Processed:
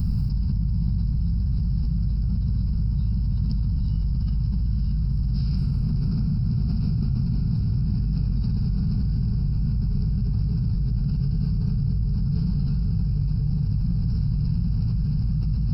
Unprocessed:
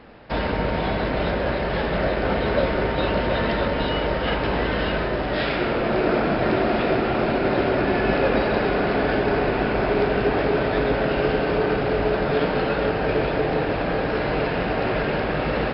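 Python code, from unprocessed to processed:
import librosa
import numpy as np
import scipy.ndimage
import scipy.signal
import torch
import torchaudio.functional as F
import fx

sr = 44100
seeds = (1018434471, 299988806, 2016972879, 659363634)

y = scipy.signal.sosfilt(scipy.signal.cheby2(4, 40, [300.0, 3700.0], 'bandstop', fs=sr, output='sos'), x)
y = fx.env_flatten(y, sr, amount_pct=100)
y = y * 10.0 ** (3.0 / 20.0)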